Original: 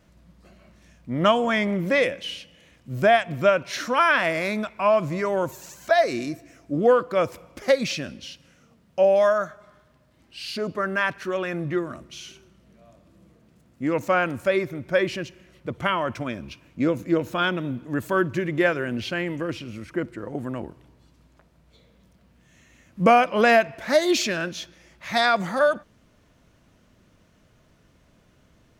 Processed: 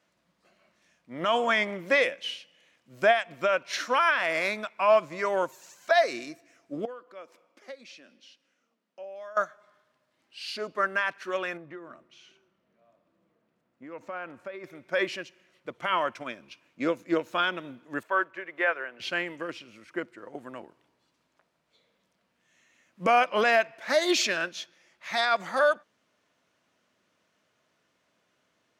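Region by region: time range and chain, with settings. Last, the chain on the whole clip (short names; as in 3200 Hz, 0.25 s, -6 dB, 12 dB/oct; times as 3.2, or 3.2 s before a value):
6.85–9.37 high shelf 11000 Hz -7 dB + compressor 2:1, threshold -33 dBFS + ladder high-pass 190 Hz, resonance 35%
11.57–14.64 LPF 1500 Hz 6 dB/oct + compressor 16:1, threshold -27 dBFS
18.03–19 block floating point 7-bit + three-band isolator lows -18 dB, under 440 Hz, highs -19 dB, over 2700 Hz
whole clip: weighting filter A; limiter -15 dBFS; upward expander 1.5:1, over -41 dBFS; gain +3 dB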